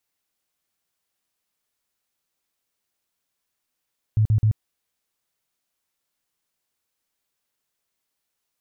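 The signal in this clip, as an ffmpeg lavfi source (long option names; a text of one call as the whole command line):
ffmpeg -f lavfi -i "aevalsrc='0.188*sin(2*PI*108*mod(t,0.13))*lt(mod(t,0.13),9/108)':duration=0.39:sample_rate=44100" out.wav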